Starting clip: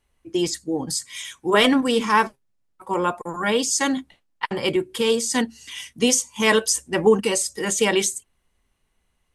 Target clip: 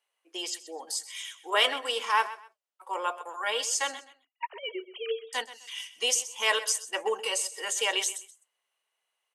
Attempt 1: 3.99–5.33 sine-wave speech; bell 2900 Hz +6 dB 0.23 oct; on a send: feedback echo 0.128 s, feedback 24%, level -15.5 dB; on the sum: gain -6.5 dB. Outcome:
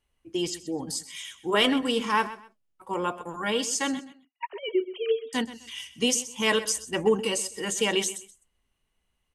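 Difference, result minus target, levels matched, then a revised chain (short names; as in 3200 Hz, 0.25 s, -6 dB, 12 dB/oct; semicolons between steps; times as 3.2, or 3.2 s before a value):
500 Hz band +4.5 dB
3.99–5.33 sine-wave speech; HPF 530 Hz 24 dB/oct; bell 2900 Hz +6 dB 0.23 oct; on a send: feedback echo 0.128 s, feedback 24%, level -15.5 dB; on the sum: gain -6.5 dB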